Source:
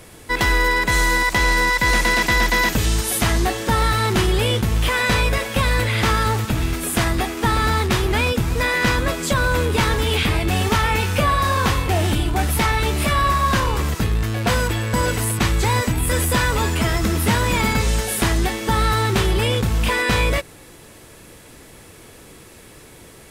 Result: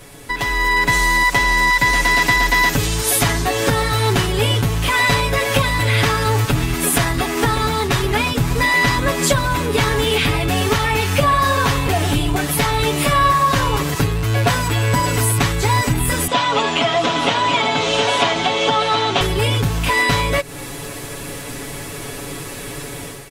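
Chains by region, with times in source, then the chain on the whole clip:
16.27–19.21 s: cabinet simulation 270–5800 Hz, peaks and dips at 380 Hz -8 dB, 680 Hz +7 dB, 1.8 kHz -6 dB, 3.2 kHz +6 dB, 5 kHz -6 dB + delay 721 ms -7.5 dB
whole clip: compression, threshold -27 dBFS; comb 7.1 ms, depth 90%; level rider gain up to 11.5 dB

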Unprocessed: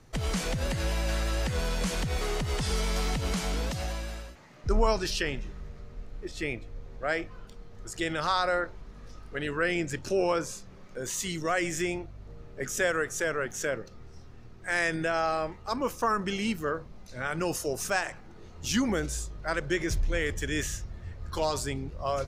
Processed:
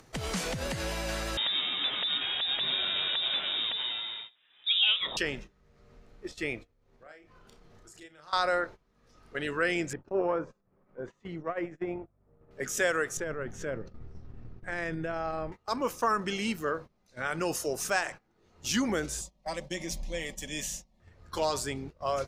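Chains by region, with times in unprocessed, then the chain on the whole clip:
1.37–5.17 s: high-pass 61 Hz + frequency inversion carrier 3.7 kHz
6.67–8.33 s: compression, threshold -42 dBFS + doubling 33 ms -6.5 dB
9.93–12.51 s: low-pass 1.2 kHz + transformer saturation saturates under 260 Hz
13.17–15.52 s: RIAA curve playback + compression, threshold -27 dBFS
19.21–21.00 s: static phaser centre 390 Hz, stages 6 + comb 5.3 ms, depth 49%
whole clip: bass shelf 110 Hz -12 dB; gate -41 dBFS, range -19 dB; upward compressor, threshold -41 dBFS

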